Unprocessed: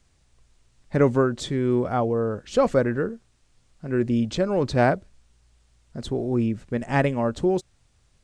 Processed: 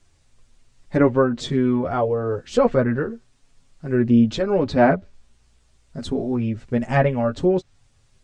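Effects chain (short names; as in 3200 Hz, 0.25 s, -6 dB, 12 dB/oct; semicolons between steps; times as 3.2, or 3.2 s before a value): treble ducked by the level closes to 2600 Hz, closed at -16.5 dBFS; chorus voices 4, 0.25 Hz, delay 10 ms, depth 2.9 ms; gain +5.5 dB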